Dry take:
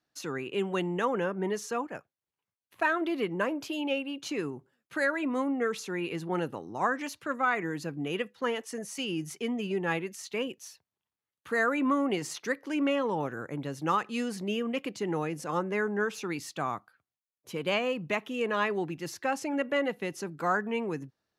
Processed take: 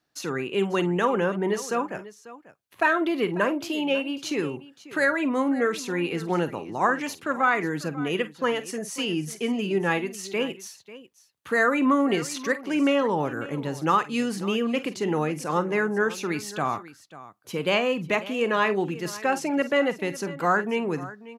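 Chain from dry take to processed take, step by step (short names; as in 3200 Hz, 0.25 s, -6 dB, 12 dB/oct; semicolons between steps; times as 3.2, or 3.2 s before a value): tapped delay 46/51/543 ms -15/-18/-17 dB; gain +5.5 dB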